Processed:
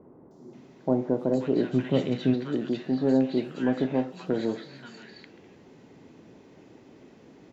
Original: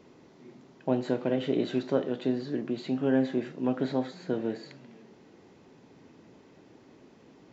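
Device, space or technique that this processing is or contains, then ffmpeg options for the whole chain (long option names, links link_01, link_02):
parallel distortion: -filter_complex "[0:a]asplit=3[link_01][link_02][link_03];[link_01]afade=type=out:start_time=1.71:duration=0.02[link_04];[link_02]asubboost=boost=5.5:cutoff=200,afade=type=in:start_time=1.71:duration=0.02,afade=type=out:start_time=2.33:duration=0.02[link_05];[link_03]afade=type=in:start_time=2.33:duration=0.02[link_06];[link_04][link_05][link_06]amix=inputs=3:normalize=0,asplit=2[link_07][link_08];[link_08]asoftclip=type=hard:threshold=-27dB,volume=-13.5dB[link_09];[link_07][link_09]amix=inputs=2:normalize=0,acrossover=split=1200|4800[link_10][link_11][link_12];[link_12]adelay=310[link_13];[link_11]adelay=530[link_14];[link_10][link_14][link_13]amix=inputs=3:normalize=0,volume=2dB"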